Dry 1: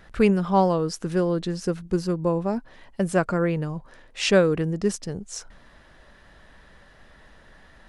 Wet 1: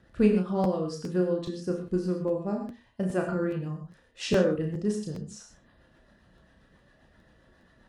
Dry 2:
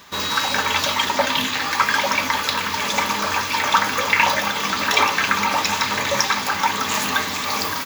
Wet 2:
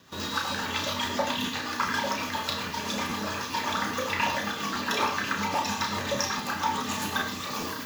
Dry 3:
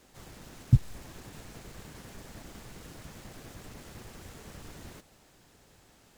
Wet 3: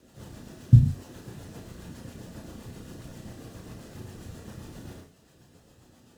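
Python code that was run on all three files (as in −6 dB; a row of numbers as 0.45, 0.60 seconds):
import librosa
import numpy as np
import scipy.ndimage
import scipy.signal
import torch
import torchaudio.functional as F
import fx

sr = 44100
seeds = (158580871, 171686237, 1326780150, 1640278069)

y = fx.hum_notches(x, sr, base_hz=50, count=2)
y = fx.dereverb_blind(y, sr, rt60_s=0.56)
y = scipy.signal.sosfilt(scipy.signal.butter(2, 60.0, 'highpass', fs=sr, output='sos'), y)
y = fx.low_shelf(y, sr, hz=480.0, db=8.0)
y = fx.notch(y, sr, hz=2200.0, q=8.7)
y = fx.rotary(y, sr, hz=7.5)
y = fx.doubler(y, sr, ms=33.0, db=-5.5)
y = y + 10.0 ** (-21.0 / 20.0) * np.pad(y, (int(104 * sr / 1000.0), 0))[:len(y)]
y = fx.rev_gated(y, sr, seeds[0], gate_ms=150, shape='flat', drr_db=4.0)
y = fx.buffer_crackle(y, sr, first_s=0.63, period_s=0.41, block=512, kind='repeat')
y = y * 10.0 ** (-30 / 20.0) / np.sqrt(np.mean(np.square(y)))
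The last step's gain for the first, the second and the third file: −9.0, −8.5, +0.5 decibels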